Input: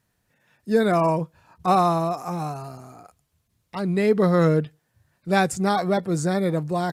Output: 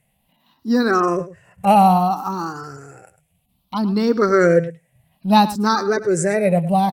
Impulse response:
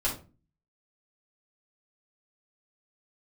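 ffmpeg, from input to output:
-filter_complex "[0:a]afftfilt=real='re*pow(10,17/40*sin(2*PI*(0.5*log(max(b,1)*sr/1024/100)/log(2)-(0.61)*(pts-256)/sr)))':imag='im*pow(10,17/40*sin(2*PI*(0.5*log(max(b,1)*sr/1024/100)/log(2)-(0.61)*(pts-256)/sr)))':win_size=1024:overlap=0.75,asplit=2[s0][s1];[s1]adelay=105,volume=0.178,highshelf=f=4000:g=-2.36[s2];[s0][s2]amix=inputs=2:normalize=0,asetrate=48091,aresample=44100,atempo=0.917004,volume=1.19"

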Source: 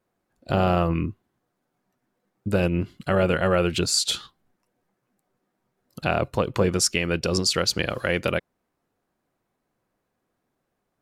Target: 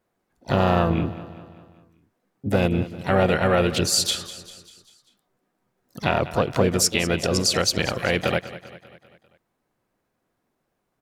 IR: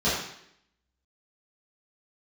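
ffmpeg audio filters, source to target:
-filter_complex "[0:a]asplit=2[s0][s1];[s1]asetrate=58866,aresample=44100,atempo=0.749154,volume=0.398[s2];[s0][s2]amix=inputs=2:normalize=0,aecho=1:1:197|394|591|788|985:0.168|0.089|0.0472|0.025|0.0132,volume=1.12"

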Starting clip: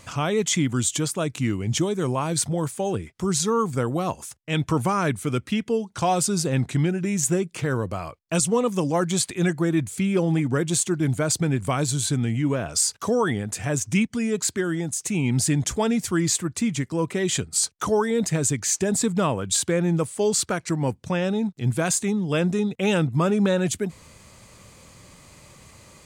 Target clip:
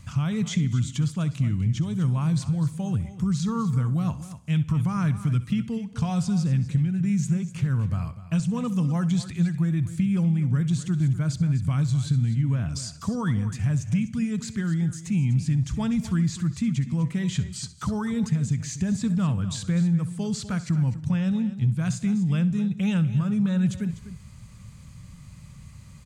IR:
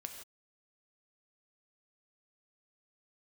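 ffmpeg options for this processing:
-filter_complex "[0:a]acrossover=split=6300[s0][s1];[s1]acompressor=threshold=0.00794:ratio=4:attack=1:release=60[s2];[s0][s2]amix=inputs=2:normalize=0,firequalizer=gain_entry='entry(160,0);entry(360,-24);entry(1200,-15)':delay=0.05:min_phase=1,acompressor=threshold=0.0398:ratio=6,aecho=1:1:249:0.2,asplit=2[s3][s4];[1:a]atrim=start_sample=2205,adelay=65[s5];[s4][s5]afir=irnorm=-1:irlink=0,volume=0.251[s6];[s3][s6]amix=inputs=2:normalize=0,volume=2.51"

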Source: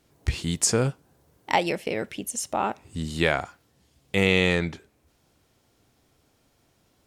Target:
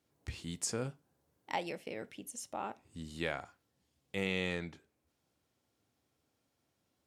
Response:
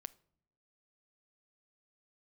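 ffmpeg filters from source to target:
-filter_complex "[0:a]highpass=76[s0];[1:a]atrim=start_sample=2205,afade=t=out:st=0.24:d=0.01,atrim=end_sample=11025,asetrate=83790,aresample=44100[s1];[s0][s1]afir=irnorm=-1:irlink=0,volume=0.668"

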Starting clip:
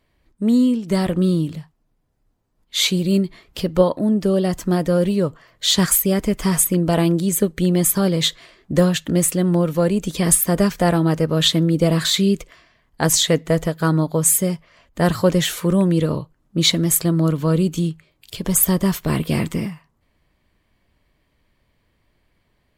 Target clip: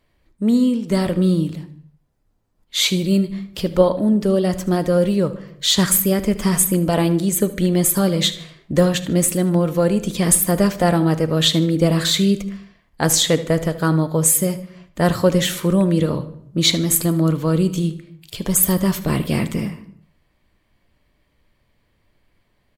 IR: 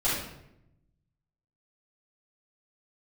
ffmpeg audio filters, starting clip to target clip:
-filter_complex "[0:a]aecho=1:1:76|152|228:0.141|0.0466|0.0154,asplit=2[s0][s1];[1:a]atrim=start_sample=2205,afade=t=out:st=0.43:d=0.01,atrim=end_sample=19404[s2];[s1][s2]afir=irnorm=-1:irlink=0,volume=0.0631[s3];[s0][s3]amix=inputs=2:normalize=0"

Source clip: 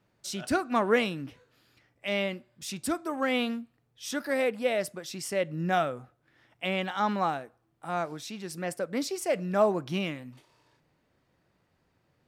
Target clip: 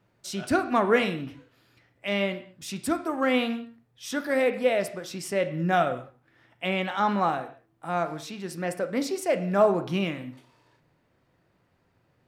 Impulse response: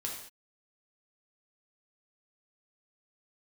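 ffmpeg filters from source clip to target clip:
-filter_complex "[0:a]asplit=2[s0][s1];[1:a]atrim=start_sample=2205,asetrate=48510,aresample=44100,lowpass=3500[s2];[s1][s2]afir=irnorm=-1:irlink=0,volume=0.631[s3];[s0][s3]amix=inputs=2:normalize=0"

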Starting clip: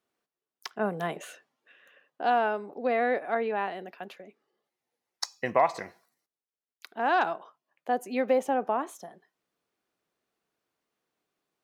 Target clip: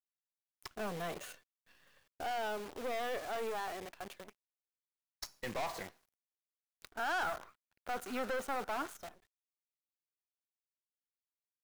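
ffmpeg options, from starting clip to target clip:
-filter_complex "[0:a]acrusher=bits=8:dc=4:mix=0:aa=0.000001,aeval=exprs='(tanh(39.8*val(0)+0.4)-tanh(0.4))/39.8':c=same,asettb=1/sr,asplit=3[s0][s1][s2];[s0]atrim=end=6.934[s3];[s1]atrim=start=6.93:end=9.03,asetpts=PTS-STARTPTS,afade=t=in:d=0.004:c=qsin,afade=t=out:st=2.096:d=0.004:c=qsin,equalizer=f=1400:w=4.7:g=12[s4];[s2]atrim=start=9.026[s5];[s3][s4]acrossfade=d=0.004:c1=hsin:c2=qsin[s6];[s6][s5]acrossfade=d=0.004:c1=qsin:c2=hsin,volume=0.708"

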